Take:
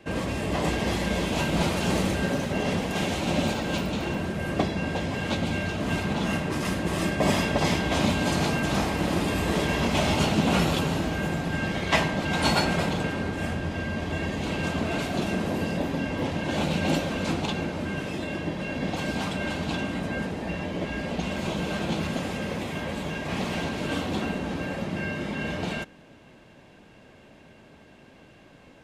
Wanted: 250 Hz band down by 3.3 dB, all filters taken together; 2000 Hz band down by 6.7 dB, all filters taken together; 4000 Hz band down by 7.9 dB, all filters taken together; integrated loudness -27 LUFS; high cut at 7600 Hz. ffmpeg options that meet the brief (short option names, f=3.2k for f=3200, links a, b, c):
-af "lowpass=7.6k,equalizer=f=250:t=o:g=-4.5,equalizer=f=2k:t=o:g=-7,equalizer=f=4k:t=o:g=-7.5,volume=3.5dB"